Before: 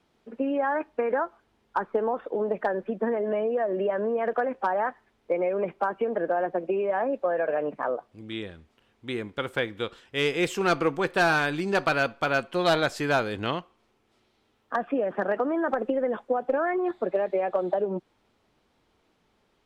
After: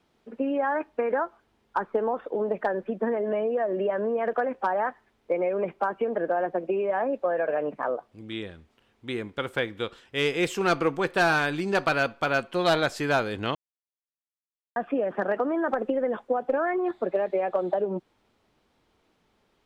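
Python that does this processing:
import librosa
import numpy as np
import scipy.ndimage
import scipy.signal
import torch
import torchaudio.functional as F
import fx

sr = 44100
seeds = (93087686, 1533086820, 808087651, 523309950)

y = fx.edit(x, sr, fx.silence(start_s=13.55, length_s=1.21), tone=tone)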